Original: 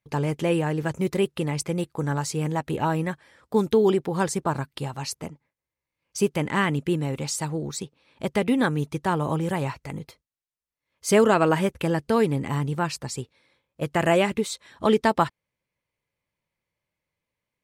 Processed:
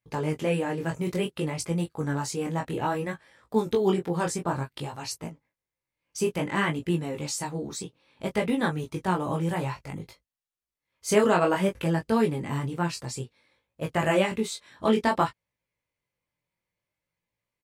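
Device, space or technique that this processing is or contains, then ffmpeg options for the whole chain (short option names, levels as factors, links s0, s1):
double-tracked vocal: -filter_complex "[0:a]asplit=2[s0][s1];[s1]adelay=17,volume=0.376[s2];[s0][s2]amix=inputs=2:normalize=0,flanger=delay=18:depth=5.9:speed=0.58"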